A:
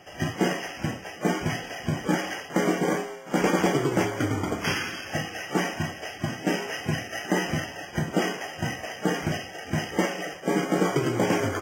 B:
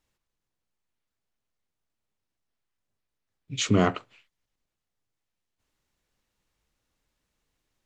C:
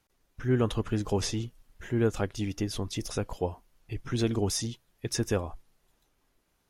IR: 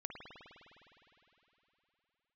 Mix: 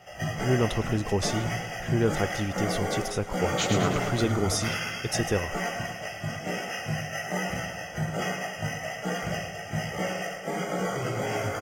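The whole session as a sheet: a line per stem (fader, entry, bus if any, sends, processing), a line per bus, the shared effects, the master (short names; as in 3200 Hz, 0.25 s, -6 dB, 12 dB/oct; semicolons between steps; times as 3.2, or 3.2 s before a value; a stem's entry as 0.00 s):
+0.5 dB, 0.00 s, no send, echo send -8.5 dB, comb 1.5 ms, depth 55%; limiter -18 dBFS, peak gain reduction 7 dB; chorus 1.2 Hz, delay 16 ms, depth 3.6 ms
-1.5 dB, 0.00 s, no send, echo send -5 dB, limiter -13 dBFS, peak gain reduction 5 dB
+2.0 dB, 0.00 s, no send, echo send -22 dB, dry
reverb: off
echo: feedback echo 0.108 s, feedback 56%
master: bell 270 Hz -5 dB 0.28 oct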